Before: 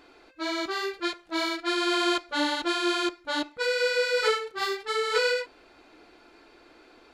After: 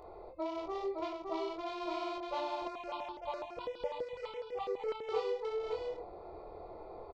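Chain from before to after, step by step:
adaptive Wiener filter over 15 samples
high-shelf EQ 4,500 Hz +7.5 dB
mains-hum notches 50/100/150/200/250/300/350 Hz
downward compressor 8 to 1, threshold −40 dBFS, peak gain reduction 20.5 dB
head-to-tape spacing loss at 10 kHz 40 dB
phaser with its sweep stopped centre 660 Hz, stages 4
double-tracking delay 25 ms −5 dB
single-tap delay 564 ms −3.5 dB
0:02.67–0:05.09: step-sequenced phaser 12 Hz 870–2,000 Hz
level +12.5 dB

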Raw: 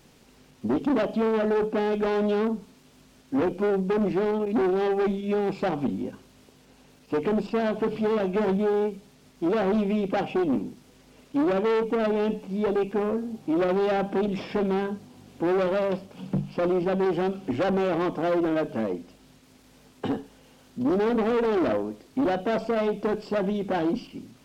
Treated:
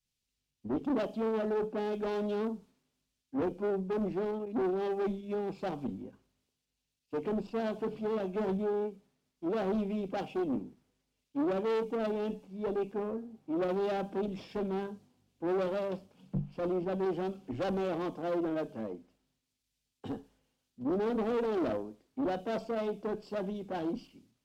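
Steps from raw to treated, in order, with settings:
dynamic equaliser 2,000 Hz, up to −4 dB, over −47 dBFS, Q 1.2
multiband upward and downward expander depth 100%
level −8 dB

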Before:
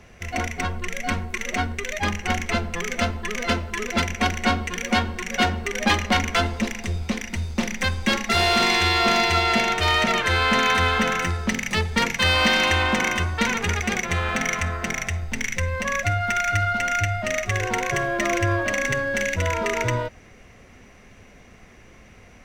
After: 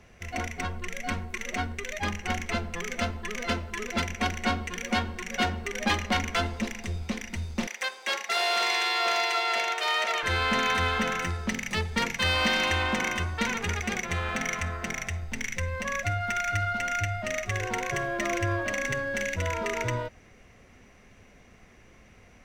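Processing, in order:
0:07.67–0:10.23: high-pass filter 460 Hz 24 dB per octave
level −6 dB

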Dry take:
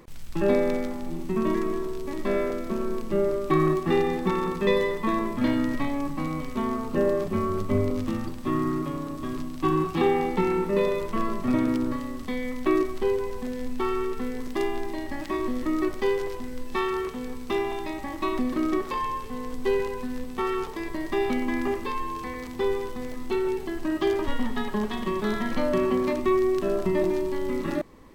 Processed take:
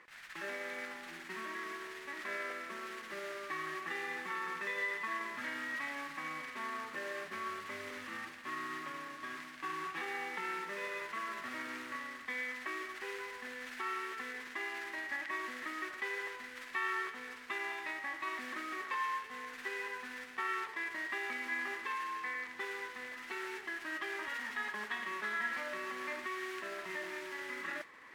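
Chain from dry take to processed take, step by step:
reversed playback
upward compression, threshold −37 dBFS
reversed playback
brickwall limiter −21.5 dBFS, peak gain reduction 11 dB
noise that follows the level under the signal 11 dB
resonant band-pass 1,800 Hz, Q 3.1
level +4.5 dB

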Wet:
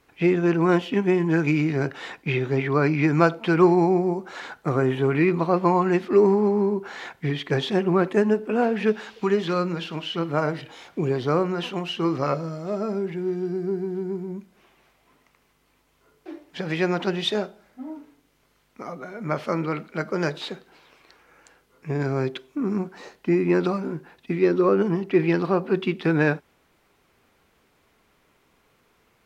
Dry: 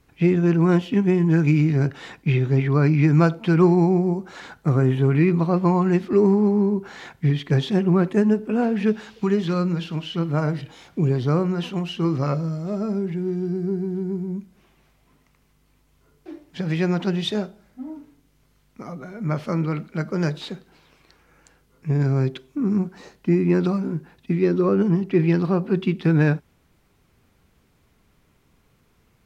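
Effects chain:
bass and treble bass −13 dB, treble −4 dB
level +3.5 dB

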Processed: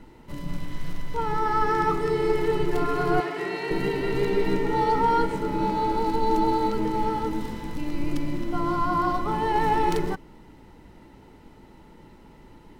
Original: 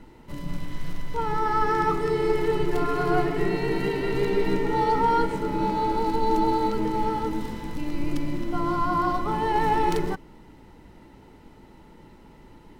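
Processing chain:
0:03.20–0:03.71: meter weighting curve A

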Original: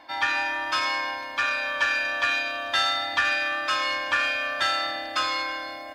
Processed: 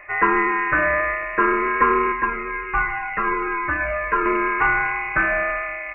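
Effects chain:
voice inversion scrambler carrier 2,800 Hz
0:02.12–0:04.26: flanger whose copies keep moving one way falling 1.3 Hz
level +7.5 dB

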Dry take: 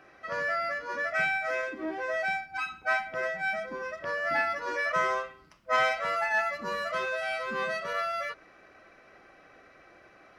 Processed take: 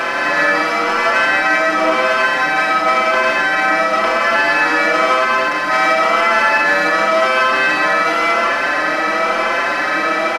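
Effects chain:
compressor on every frequency bin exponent 0.2
parametric band 120 Hz −10 dB 1 octave
on a send at −2 dB: convolution reverb RT60 0.80 s, pre-delay 105 ms
on the sum: boost into a limiter +11.5 dB
barber-pole flanger 5.5 ms +0.95 Hz
level −1 dB

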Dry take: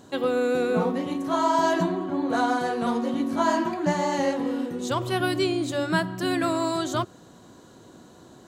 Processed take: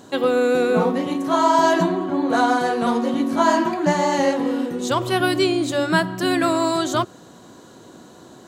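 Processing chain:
low-shelf EQ 84 Hz −11.5 dB
level +6 dB

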